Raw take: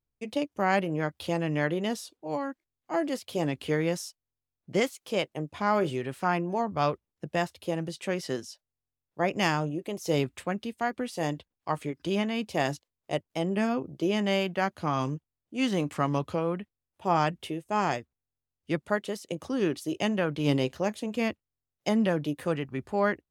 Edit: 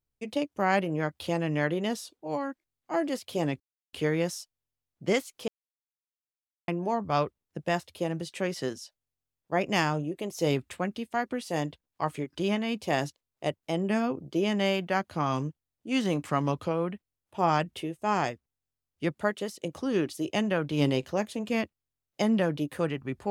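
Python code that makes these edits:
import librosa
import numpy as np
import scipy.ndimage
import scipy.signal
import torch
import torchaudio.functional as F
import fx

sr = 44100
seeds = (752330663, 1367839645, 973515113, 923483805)

y = fx.edit(x, sr, fx.insert_silence(at_s=3.6, length_s=0.33),
    fx.silence(start_s=5.15, length_s=1.2), tone=tone)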